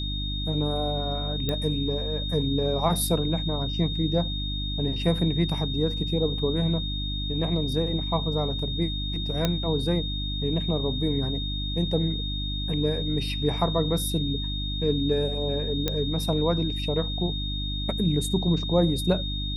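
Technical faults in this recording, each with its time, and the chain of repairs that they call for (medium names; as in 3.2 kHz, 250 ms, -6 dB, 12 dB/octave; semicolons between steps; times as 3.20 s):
hum 50 Hz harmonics 6 -31 dBFS
whine 3.7 kHz -32 dBFS
1.49 s: pop -14 dBFS
9.45 s: pop -9 dBFS
15.88 s: pop -10 dBFS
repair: de-click; band-stop 3.7 kHz, Q 30; de-hum 50 Hz, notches 6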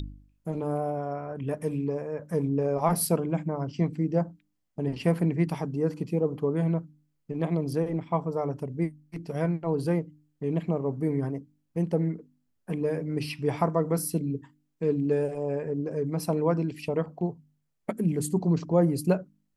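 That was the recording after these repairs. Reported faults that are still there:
nothing left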